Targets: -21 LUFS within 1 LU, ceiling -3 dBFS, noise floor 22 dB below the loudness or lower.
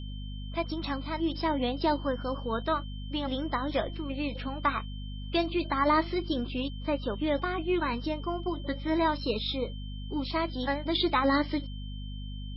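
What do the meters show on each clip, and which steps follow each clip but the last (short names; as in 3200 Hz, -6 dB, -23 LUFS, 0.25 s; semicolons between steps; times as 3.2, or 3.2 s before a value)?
hum 50 Hz; harmonics up to 250 Hz; hum level -36 dBFS; steady tone 3100 Hz; tone level -49 dBFS; loudness -30.5 LUFS; peak -14.5 dBFS; loudness target -21.0 LUFS
-> notches 50/100/150/200/250 Hz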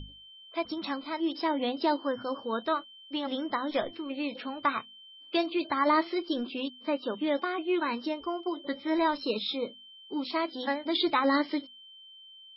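hum none; steady tone 3100 Hz; tone level -49 dBFS
-> notch 3100 Hz, Q 30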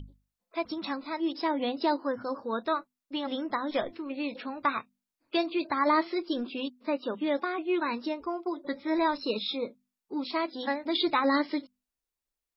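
steady tone none; loudness -31.0 LUFS; peak -14.5 dBFS; loudness target -21.0 LUFS
-> gain +10 dB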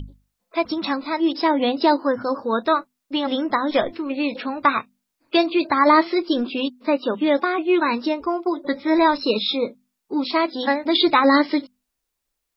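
loudness -21.0 LUFS; peak -4.5 dBFS; noise floor -80 dBFS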